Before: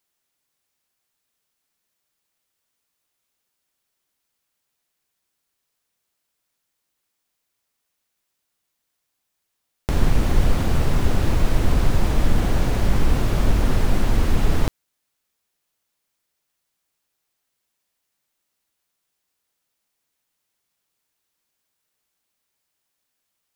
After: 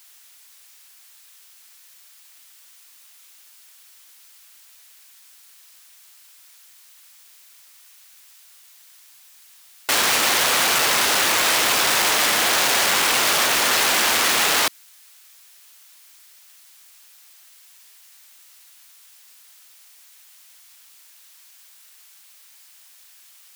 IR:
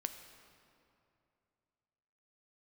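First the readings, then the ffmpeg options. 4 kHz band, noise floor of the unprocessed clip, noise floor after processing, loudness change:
+18.0 dB, -78 dBFS, -50 dBFS, +6.5 dB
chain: -filter_complex "[0:a]asplit=2[a][b];[b]highpass=f=720:p=1,volume=38dB,asoftclip=type=tanh:threshold=-3dB[c];[a][c]amix=inputs=2:normalize=0,lowpass=f=1.6k:p=1,volume=-6dB,aderivative,volume=8.5dB"

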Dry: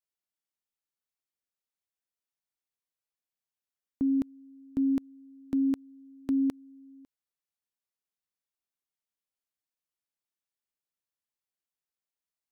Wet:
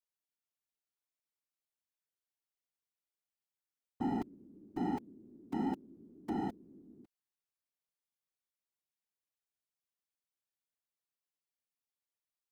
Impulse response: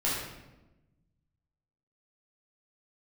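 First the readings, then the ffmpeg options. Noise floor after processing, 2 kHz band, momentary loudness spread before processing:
under -85 dBFS, n/a, 8 LU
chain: -af "aeval=exprs='0.0531*(abs(mod(val(0)/0.0531+3,4)-2)-1)':c=same,afftfilt=real='hypot(re,im)*cos(2*PI*random(0))':imag='hypot(re,im)*sin(2*PI*random(1))':win_size=512:overlap=0.75,volume=1dB"

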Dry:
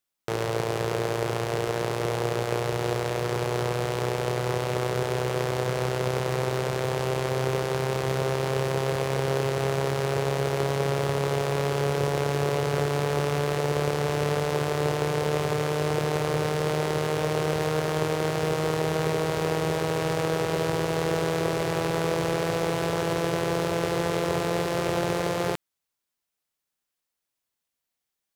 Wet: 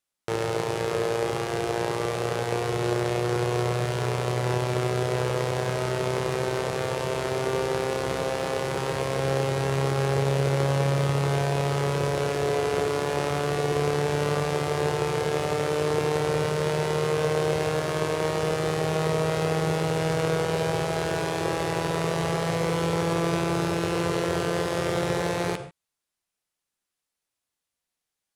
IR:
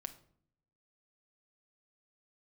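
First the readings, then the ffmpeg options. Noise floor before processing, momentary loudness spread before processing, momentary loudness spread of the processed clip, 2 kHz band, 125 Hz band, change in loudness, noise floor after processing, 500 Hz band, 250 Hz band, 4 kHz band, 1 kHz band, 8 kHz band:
-84 dBFS, 2 LU, 3 LU, +0.5 dB, +1.0 dB, +0.5 dB, -85 dBFS, +0.5 dB, +1.0 dB, +0.5 dB, +0.5 dB, +0.5 dB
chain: -filter_complex "[1:a]atrim=start_sample=2205,atrim=end_sample=3528,asetrate=22491,aresample=44100[a];[0:a][a]afir=irnorm=-1:irlink=0"

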